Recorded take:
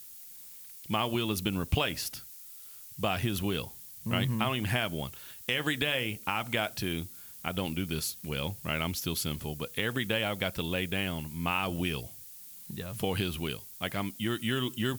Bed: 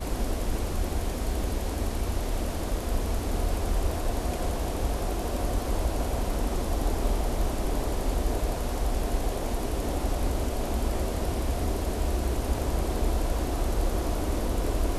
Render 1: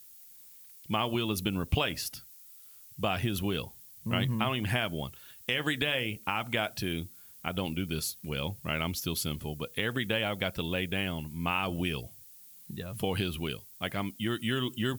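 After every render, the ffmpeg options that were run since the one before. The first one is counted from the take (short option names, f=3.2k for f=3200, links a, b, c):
-af "afftdn=nr=6:nf=-48"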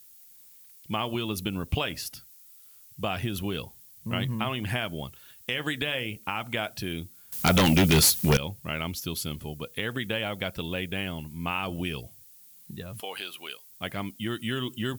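-filter_complex "[0:a]asettb=1/sr,asplit=3[a][b][c];[a]atrim=end=7.324[d];[b]atrim=start=7.32:end=8.37,asetpts=PTS-STARTPTS,afade=t=in:d=0.004:c=qsin,afade=t=out:st=1.046:d=0.004:c=qsin,aeval=exprs='0.188*sin(PI/2*5.01*val(0)/0.188)':c=same[e];[c]atrim=start=8.366[f];[d][e]acrossfade=d=0.004:c1=hsin:c2=qsin[g];[g][f]acrossfade=d=0.004:c1=qsin:c2=hsin,asettb=1/sr,asplit=3[h][i][j];[h]atrim=end=13.004[k];[i]atrim=start=13:end=13.7,asetpts=PTS-STARTPTS,afade=t=in:d=0.004:c=qsin,afade=t=out:st=0.696:d=0.004:c=qsin,highpass=680[l];[j]atrim=start=13.696[m];[k][l]acrossfade=d=0.004:c1=hsin:c2=qsin[n];[n][m]acrossfade=d=0.004:c1=qsin:c2=hsin"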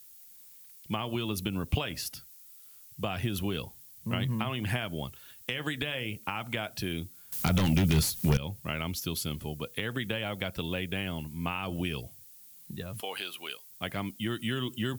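-filter_complex "[0:a]acrossover=split=180[a][b];[b]acompressor=threshold=-29dB:ratio=6[c];[a][c]amix=inputs=2:normalize=0"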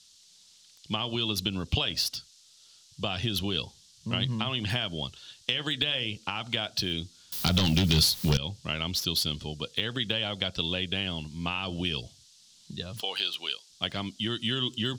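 -filter_complex "[0:a]acrossover=split=5000[a][b];[a]aexciter=amount=8.9:drive=2.2:freq=3.2k[c];[b]aeval=exprs='val(0)*gte(abs(val(0)),0.0106)':c=same[d];[c][d]amix=inputs=2:normalize=0"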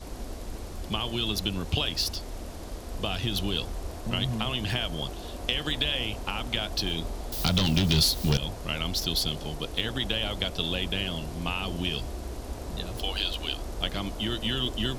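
-filter_complex "[1:a]volume=-9dB[a];[0:a][a]amix=inputs=2:normalize=0"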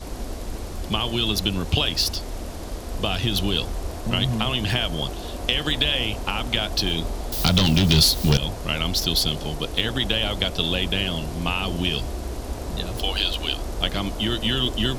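-af "volume=6dB,alimiter=limit=-3dB:level=0:latency=1"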